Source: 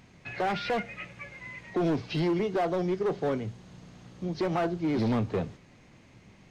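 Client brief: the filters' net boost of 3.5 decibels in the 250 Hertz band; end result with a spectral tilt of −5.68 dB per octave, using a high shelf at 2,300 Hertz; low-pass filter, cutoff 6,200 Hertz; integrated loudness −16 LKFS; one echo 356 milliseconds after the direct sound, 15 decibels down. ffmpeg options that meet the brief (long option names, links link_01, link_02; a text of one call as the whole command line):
ffmpeg -i in.wav -af "lowpass=6200,equalizer=frequency=250:width_type=o:gain=5,highshelf=frequency=2300:gain=5,aecho=1:1:356:0.178,volume=11.5dB" out.wav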